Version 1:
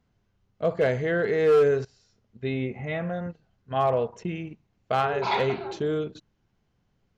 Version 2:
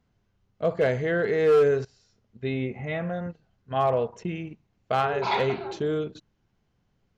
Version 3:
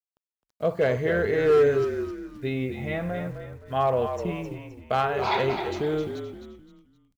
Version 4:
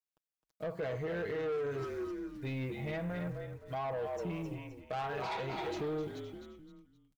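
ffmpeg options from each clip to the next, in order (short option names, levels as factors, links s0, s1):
-af anull
-filter_complex "[0:a]acrusher=bits=9:mix=0:aa=0.000001,asplit=2[s0][s1];[s1]asplit=4[s2][s3][s4][s5];[s2]adelay=260,afreqshift=-45,volume=0.398[s6];[s3]adelay=520,afreqshift=-90,volume=0.14[s7];[s4]adelay=780,afreqshift=-135,volume=0.049[s8];[s5]adelay=1040,afreqshift=-180,volume=0.017[s9];[s6][s7][s8][s9]amix=inputs=4:normalize=0[s10];[s0][s10]amix=inputs=2:normalize=0"
-af "aecho=1:1:6.3:0.53,alimiter=limit=0.112:level=0:latency=1:release=246,asoftclip=type=tanh:threshold=0.0531,volume=0.501"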